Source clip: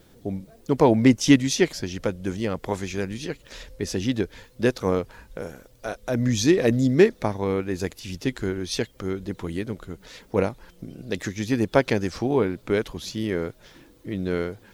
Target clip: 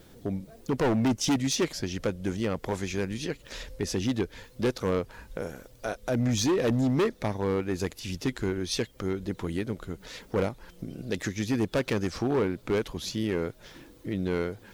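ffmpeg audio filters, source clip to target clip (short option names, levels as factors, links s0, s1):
-filter_complex "[0:a]asplit=2[s0][s1];[s1]acompressor=threshold=0.0178:ratio=6,volume=0.75[s2];[s0][s2]amix=inputs=2:normalize=0,asoftclip=type=hard:threshold=0.133,volume=0.668"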